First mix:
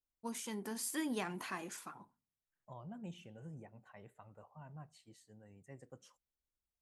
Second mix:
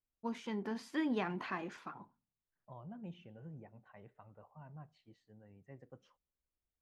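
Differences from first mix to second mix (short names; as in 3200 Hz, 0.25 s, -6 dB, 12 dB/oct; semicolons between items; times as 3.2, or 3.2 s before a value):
first voice +4.0 dB; master: add air absorption 250 m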